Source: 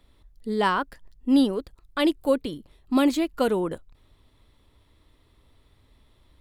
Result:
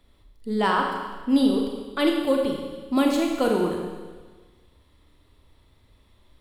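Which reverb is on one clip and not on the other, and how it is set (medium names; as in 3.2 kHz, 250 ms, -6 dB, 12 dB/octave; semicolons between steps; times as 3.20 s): Schroeder reverb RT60 1.4 s, combs from 30 ms, DRR 1 dB; trim -1 dB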